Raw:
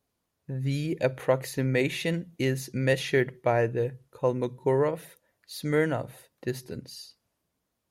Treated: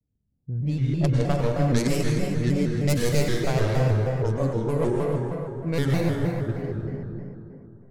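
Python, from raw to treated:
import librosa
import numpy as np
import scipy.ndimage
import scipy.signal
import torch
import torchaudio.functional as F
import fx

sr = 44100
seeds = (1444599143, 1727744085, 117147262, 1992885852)

p1 = fx.tracing_dist(x, sr, depth_ms=0.28)
p2 = fx.env_lowpass(p1, sr, base_hz=330.0, full_db=-19.5)
p3 = fx.bass_treble(p2, sr, bass_db=13, treble_db=11)
p4 = p3 + fx.echo_feedback(p3, sr, ms=153, feedback_pct=48, wet_db=-5.0, dry=0)
p5 = fx.rev_plate(p4, sr, seeds[0], rt60_s=2.9, hf_ratio=0.35, predelay_ms=85, drr_db=-1.5)
p6 = fx.vibrato_shape(p5, sr, shape='square', rate_hz=3.2, depth_cents=160.0)
y = F.gain(torch.from_numpy(p6), -7.0).numpy()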